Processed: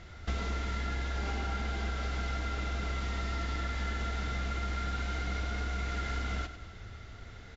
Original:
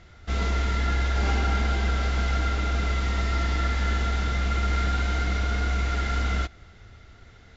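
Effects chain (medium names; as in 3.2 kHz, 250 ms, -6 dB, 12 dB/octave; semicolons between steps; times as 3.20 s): compression 6:1, threshold -32 dBFS, peak gain reduction 11.5 dB; on a send: feedback delay 100 ms, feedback 48%, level -11 dB; on the sum: trim +1.5 dB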